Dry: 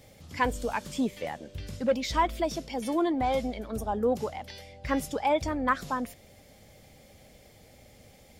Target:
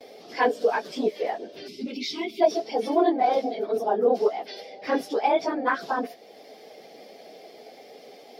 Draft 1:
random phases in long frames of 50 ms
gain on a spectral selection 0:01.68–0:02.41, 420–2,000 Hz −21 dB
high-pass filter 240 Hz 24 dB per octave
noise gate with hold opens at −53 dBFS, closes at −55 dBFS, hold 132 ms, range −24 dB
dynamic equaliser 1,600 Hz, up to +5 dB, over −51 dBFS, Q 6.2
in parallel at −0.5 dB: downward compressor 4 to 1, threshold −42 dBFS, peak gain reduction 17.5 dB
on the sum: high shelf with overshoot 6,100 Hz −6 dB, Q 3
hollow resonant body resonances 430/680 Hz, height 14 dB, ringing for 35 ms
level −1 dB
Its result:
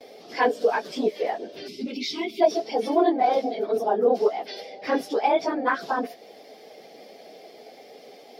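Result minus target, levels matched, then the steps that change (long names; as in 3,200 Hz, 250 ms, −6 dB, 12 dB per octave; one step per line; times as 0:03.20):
downward compressor: peak gain reduction −7 dB
change: downward compressor 4 to 1, threshold −51.5 dBFS, peak gain reduction 25 dB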